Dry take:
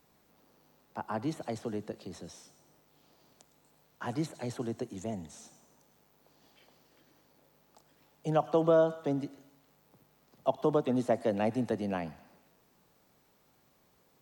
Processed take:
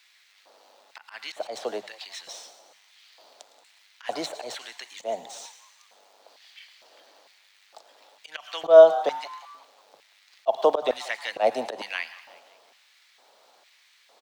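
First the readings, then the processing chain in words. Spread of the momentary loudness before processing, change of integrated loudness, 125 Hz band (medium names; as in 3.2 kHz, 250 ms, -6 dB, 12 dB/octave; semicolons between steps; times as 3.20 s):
17 LU, +9.0 dB, under -20 dB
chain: median filter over 3 samples; LFO high-pass square 1.1 Hz 620–2000 Hz; peaking EQ 3.9 kHz +8.5 dB 1.1 oct; hum notches 50/100/150/200 Hz; slow attack 110 ms; frequency-shifting echo 180 ms, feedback 48%, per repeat +130 Hz, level -19 dB; trim +7.5 dB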